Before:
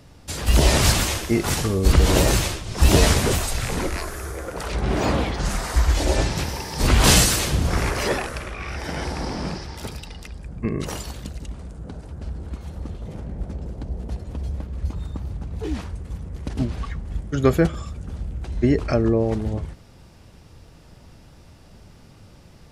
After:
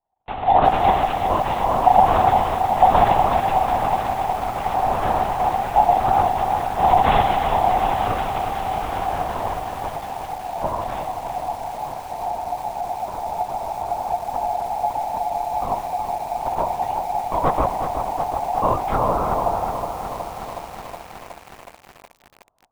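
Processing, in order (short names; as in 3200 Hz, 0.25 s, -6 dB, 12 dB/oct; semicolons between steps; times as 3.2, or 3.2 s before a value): gate -42 dBFS, range -39 dB; low shelf 290 Hz +11.5 dB; in parallel at -2 dB: compressor 20:1, threshold -16 dBFS, peak gain reduction 19 dB; on the sum: careless resampling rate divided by 8×, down none, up hold; ring modulator 770 Hz; on a send at -17 dB: reverb RT60 4.8 s, pre-delay 0.113 s; on the sum: LPC vocoder at 8 kHz whisper; lo-fi delay 0.368 s, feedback 80%, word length 5-bit, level -8 dB; gain -8 dB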